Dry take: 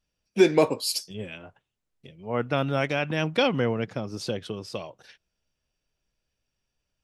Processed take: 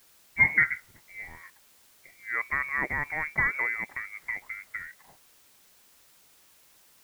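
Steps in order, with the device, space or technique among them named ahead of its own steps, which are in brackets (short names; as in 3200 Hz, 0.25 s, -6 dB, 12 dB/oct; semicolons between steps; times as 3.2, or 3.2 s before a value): scrambled radio voice (BPF 310–2800 Hz; inverted band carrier 2500 Hz; white noise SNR 27 dB); gain -2 dB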